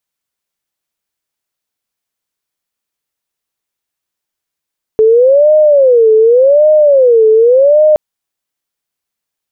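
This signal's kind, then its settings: siren wail 436–615 Hz 0.87/s sine -3.5 dBFS 2.97 s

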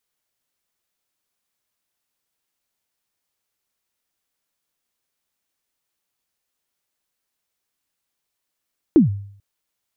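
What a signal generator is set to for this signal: kick drum length 0.44 s, from 360 Hz, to 100 Hz, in 0.131 s, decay 0.60 s, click off, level -5.5 dB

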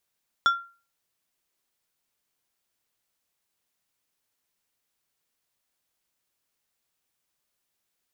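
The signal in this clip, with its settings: glass hit plate, lowest mode 1380 Hz, decay 0.36 s, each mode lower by 9 dB, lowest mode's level -14 dB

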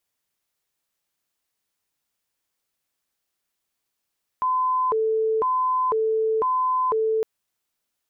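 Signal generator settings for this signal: siren hi-lo 441–1020 Hz 1/s sine -19 dBFS 2.81 s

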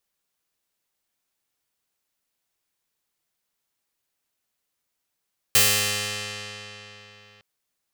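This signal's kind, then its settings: plucked string G#2, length 1.86 s, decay 3.72 s, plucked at 0.32, bright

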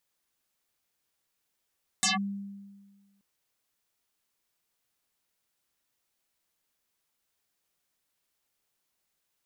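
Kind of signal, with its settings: FM tone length 1.18 s, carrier 199 Hz, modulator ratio 4.79, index 9.8, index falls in 0.15 s linear, decay 1.51 s, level -21 dB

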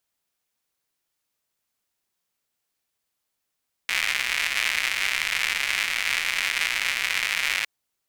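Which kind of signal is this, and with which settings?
rain from filtered ticks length 3.76 s, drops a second 190, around 2200 Hz, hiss -24.5 dB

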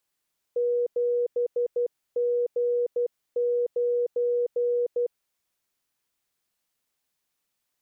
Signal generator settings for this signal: Morse "7G9" 12 wpm 483 Hz -21.5 dBFS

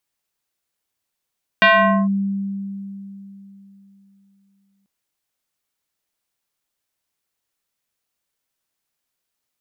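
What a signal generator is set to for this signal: FM tone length 3.24 s, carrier 197 Hz, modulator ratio 4.39, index 3, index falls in 0.46 s linear, decay 3.49 s, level -8 dB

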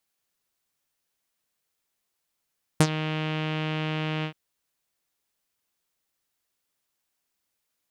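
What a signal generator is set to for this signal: synth note saw D#3 12 dB/oct, low-pass 2900 Hz, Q 3.3, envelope 2 oct, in 0.10 s, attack 3.5 ms, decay 0.06 s, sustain -14.5 dB, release 0.09 s, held 1.44 s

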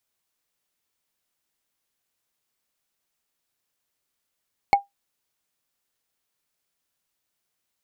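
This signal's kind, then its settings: wood hit, lowest mode 801 Hz, decay 0.15 s, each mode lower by 7.5 dB, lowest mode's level -8 dB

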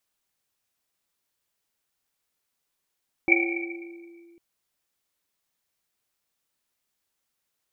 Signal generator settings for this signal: Risset drum, pitch 340 Hz, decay 2.31 s, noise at 2300 Hz, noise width 140 Hz, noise 55%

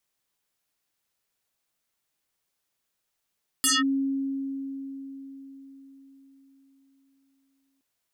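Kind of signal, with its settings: FM tone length 4.17 s, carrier 272 Hz, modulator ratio 5.74, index 7.9, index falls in 0.19 s linear, decay 4.72 s, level -18.5 dB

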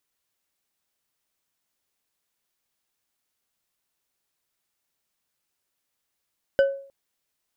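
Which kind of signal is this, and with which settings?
glass hit bar, length 0.31 s, lowest mode 550 Hz, decay 0.49 s, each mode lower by 10 dB, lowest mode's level -12.5 dB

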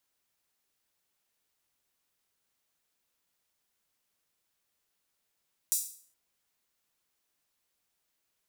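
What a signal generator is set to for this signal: open hi-hat length 0.42 s, high-pass 7200 Hz, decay 0.49 s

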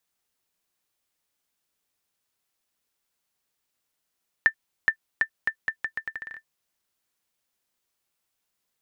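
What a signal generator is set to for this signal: bouncing ball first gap 0.42 s, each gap 0.79, 1780 Hz, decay 81 ms -7.5 dBFS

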